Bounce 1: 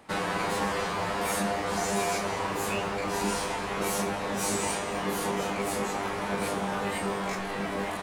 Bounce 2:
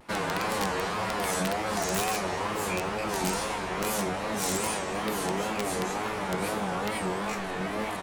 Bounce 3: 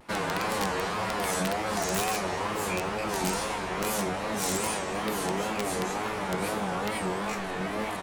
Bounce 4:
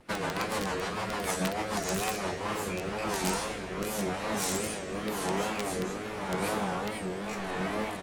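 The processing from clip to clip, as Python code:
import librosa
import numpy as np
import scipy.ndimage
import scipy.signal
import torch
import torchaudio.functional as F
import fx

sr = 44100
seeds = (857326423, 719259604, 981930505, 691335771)

y1 = (np.mod(10.0 ** (19.0 / 20.0) * x + 1.0, 2.0) - 1.0) / 10.0 ** (19.0 / 20.0)
y1 = fx.wow_flutter(y1, sr, seeds[0], rate_hz=2.1, depth_cents=140.0)
y2 = y1
y3 = fx.rotary_switch(y2, sr, hz=6.7, then_hz=0.9, switch_at_s=1.89)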